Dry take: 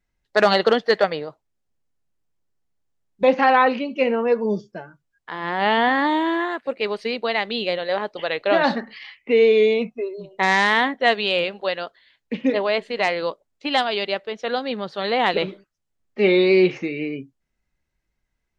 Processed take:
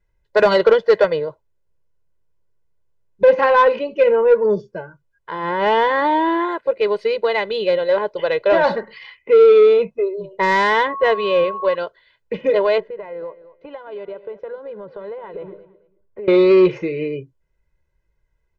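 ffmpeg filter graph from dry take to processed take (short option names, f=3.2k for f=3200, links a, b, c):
-filter_complex "[0:a]asettb=1/sr,asplit=3[a][b][c];[a]atrim=end=10.874[d];[b]atrim=start=10.87:end=11.75,asetpts=PTS-STARTPTS,afade=t=in:d=0.004:c=qsin,afade=t=out:st=0.876:d=0.004:c=qsin,lowpass=f=2.1k:p=1,aeval=exprs='val(0)+0.0316*sin(2*PI*1100*n/s)':c=same[e];[c]atrim=start=11.746[f];[d][e]acrossfade=d=0.004:c1=hsin:c2=qsin[g];[g][f]acrossfade=d=0.004:c1=qsin:c2=hsin,asettb=1/sr,asplit=3[h][i][j];[h]atrim=end=12.804[k];[i]atrim=start=12.8:end=16.28,asetpts=PTS-STARTPTS,afade=t=in:d=0.004:c=qsin,afade=t=out:st=3.476:d=0.004:c=qsin,lowpass=1.4k,acompressor=threshold=-34dB:ratio=12:attack=3.2:release=140:knee=1:detection=peak,aecho=1:1:220|440:0.168|0.0369,atrim=end_sample=153468[l];[j]atrim=start=16.276[m];[k][l]acrossfade=d=0.004:c1=hsin:c2=qsin[n];[n][m]acrossfade=d=0.004:c1=qsin:c2=hsin,highshelf=f=2k:g=-12,aecho=1:1:2:0.91,acontrast=80,volume=-3dB"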